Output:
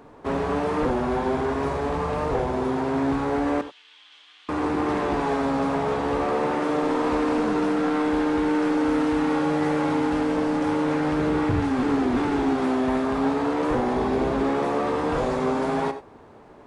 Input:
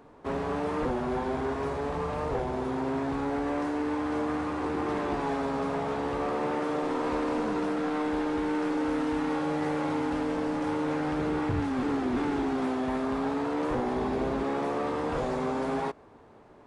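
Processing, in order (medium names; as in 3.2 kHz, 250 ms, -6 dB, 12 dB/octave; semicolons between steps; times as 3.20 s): 3.61–4.49 s: ladder band-pass 3.5 kHz, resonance 70%; gated-style reverb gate 110 ms rising, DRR 11 dB; trim +5.5 dB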